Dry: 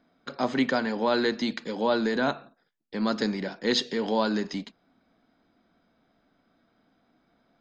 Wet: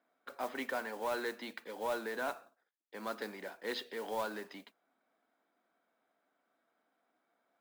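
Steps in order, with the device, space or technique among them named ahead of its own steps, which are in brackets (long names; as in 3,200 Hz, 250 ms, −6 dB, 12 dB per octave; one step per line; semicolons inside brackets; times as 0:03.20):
carbon microphone (band-pass filter 490–2,700 Hz; soft clipping −19 dBFS, distortion −19 dB; noise that follows the level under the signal 18 dB)
level −7.5 dB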